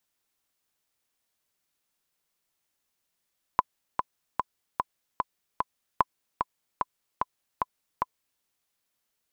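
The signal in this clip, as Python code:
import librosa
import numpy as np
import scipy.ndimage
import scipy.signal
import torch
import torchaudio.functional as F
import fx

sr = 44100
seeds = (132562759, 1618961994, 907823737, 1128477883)

y = fx.click_track(sr, bpm=149, beats=6, bars=2, hz=1010.0, accent_db=5.5, level_db=-6.5)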